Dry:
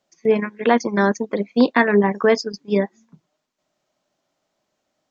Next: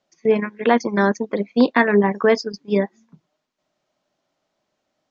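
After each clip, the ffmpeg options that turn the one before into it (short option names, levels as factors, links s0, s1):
-af "lowpass=6200"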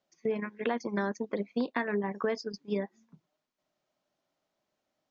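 -af "acompressor=threshold=0.112:ratio=6,volume=0.398"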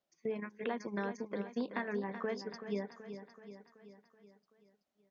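-af "aecho=1:1:379|758|1137|1516|1895|2274:0.299|0.167|0.0936|0.0524|0.0294|0.0164,volume=0.473"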